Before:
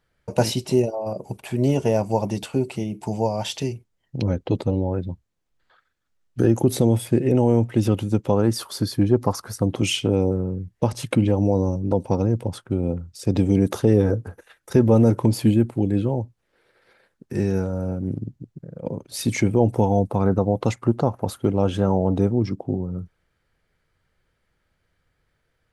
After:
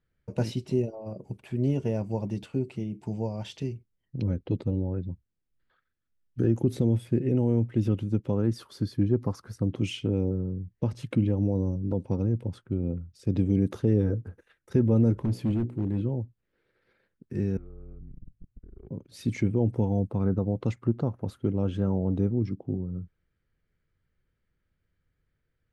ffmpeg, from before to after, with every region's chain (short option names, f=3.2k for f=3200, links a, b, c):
-filter_complex "[0:a]asettb=1/sr,asplit=3[a][b][c];[a]atrim=end=15.134[d];[b]atrim=start=15.13:end=16.01,asetpts=PTS-STARTPTS,afade=t=in:d=0.004:c=qsin,afade=t=out:st=0.876:d=0.004:c=qsin,bandreject=f=60.79:t=h:w=4,bandreject=f=121.58:t=h:w=4,bandreject=f=182.37:t=h:w=4,bandreject=f=243.16:t=h:w=4,bandreject=f=303.95:t=h:w=4,bandreject=f=364.74:t=h:w=4,bandreject=f=425.53:t=h:w=4,bandreject=f=486.32:t=h:w=4,bandreject=f=547.11:t=h:w=4,bandreject=f=607.9:t=h:w=4,bandreject=f=668.69:t=h:w=4,bandreject=f=729.48:t=h:w=4,bandreject=f=790.27:t=h:w=4,bandreject=f=851.06:t=h:w=4,asoftclip=type=hard:threshold=-17dB[e];[c]atrim=start=16.006[f];[d][e]acrossfade=d=0.004:c1=hsin:c2=qsin[g];[g][f]acrossfade=d=0.004:c1=qsin:c2=hsin,asettb=1/sr,asplit=3[h][i][j];[h]atrim=end=17.574[k];[i]atrim=start=17.57:end=18.91,asetpts=PTS-STARTPTS,afade=t=in:d=0.004:c=qsin,afade=t=out:st=1.336:d=0.004:c=qsin,acompressor=threshold=-35dB:ratio=12:attack=3.2:release=140:knee=1:detection=peak,afreqshift=-120,lowpass=f=3.2k:w=0.5412,lowpass=f=3.2k:w=1.3066[l];[j]atrim=start=18.906[m];[k][l]acrossfade=d=0.004:c1=hsin:c2=qsin[n];[n][m]acrossfade=d=0.004:c1=qsin:c2=hsin,lowpass=f=1.4k:p=1,equalizer=f=780:w=0.93:g=-11,volume=-4dB"